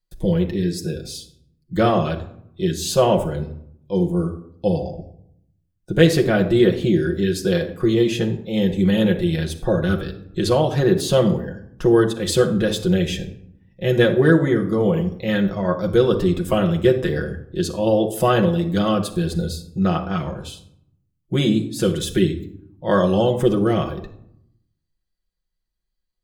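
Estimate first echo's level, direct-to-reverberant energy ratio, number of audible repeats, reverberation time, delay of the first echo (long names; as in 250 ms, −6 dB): no echo audible, 1.0 dB, no echo audible, 0.70 s, no echo audible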